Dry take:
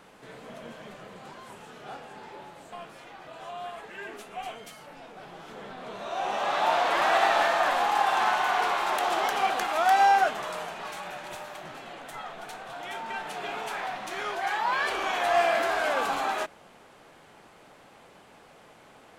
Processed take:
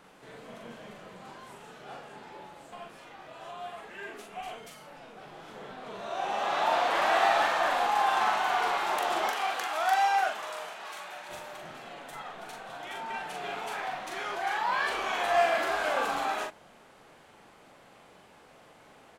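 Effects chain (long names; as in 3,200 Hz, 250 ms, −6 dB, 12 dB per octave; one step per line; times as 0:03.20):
0:09.29–0:11.29: high-pass filter 710 Hz 6 dB per octave
double-tracking delay 42 ms −4 dB
level −3.5 dB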